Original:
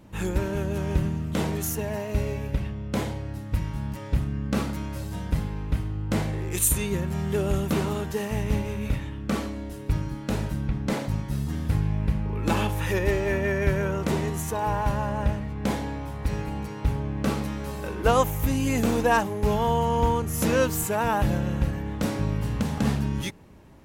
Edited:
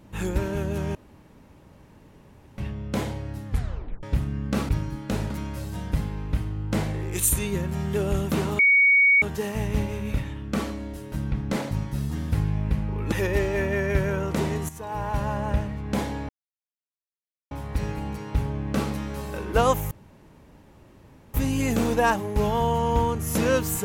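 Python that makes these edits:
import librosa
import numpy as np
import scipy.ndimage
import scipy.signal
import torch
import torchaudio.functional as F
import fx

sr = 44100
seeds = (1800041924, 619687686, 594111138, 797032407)

y = fx.edit(x, sr, fx.room_tone_fill(start_s=0.95, length_s=1.63),
    fx.tape_stop(start_s=3.48, length_s=0.55),
    fx.insert_tone(at_s=7.98, length_s=0.63, hz=2240.0, db=-14.0),
    fx.move(start_s=9.88, length_s=0.61, to_s=4.69),
    fx.cut(start_s=12.49, length_s=0.35),
    fx.fade_in_from(start_s=14.41, length_s=0.61, floor_db=-12.5),
    fx.insert_silence(at_s=16.01, length_s=1.22),
    fx.insert_room_tone(at_s=18.41, length_s=1.43), tone=tone)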